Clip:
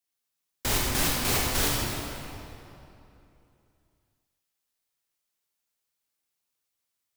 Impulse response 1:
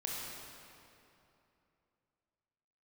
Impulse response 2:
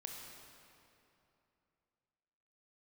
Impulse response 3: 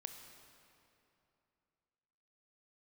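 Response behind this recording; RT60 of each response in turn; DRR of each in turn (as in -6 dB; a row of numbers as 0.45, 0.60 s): 1; 2.9, 2.9, 2.8 s; -4.0, 0.5, 5.5 dB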